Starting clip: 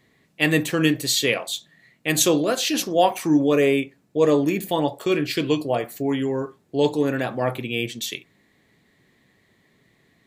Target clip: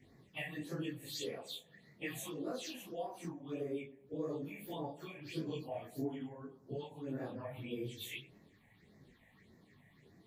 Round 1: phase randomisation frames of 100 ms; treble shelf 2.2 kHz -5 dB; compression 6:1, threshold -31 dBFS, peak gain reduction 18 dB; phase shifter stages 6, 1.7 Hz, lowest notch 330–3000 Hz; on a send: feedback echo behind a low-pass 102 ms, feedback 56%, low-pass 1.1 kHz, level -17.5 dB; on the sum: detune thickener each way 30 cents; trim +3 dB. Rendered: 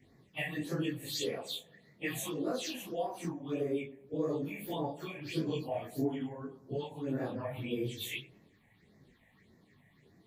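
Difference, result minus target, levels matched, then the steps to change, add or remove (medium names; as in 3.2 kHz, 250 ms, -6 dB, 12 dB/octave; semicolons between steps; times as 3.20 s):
compression: peak gain reduction -6.5 dB
change: compression 6:1, threshold -38.5 dBFS, peak gain reduction 24 dB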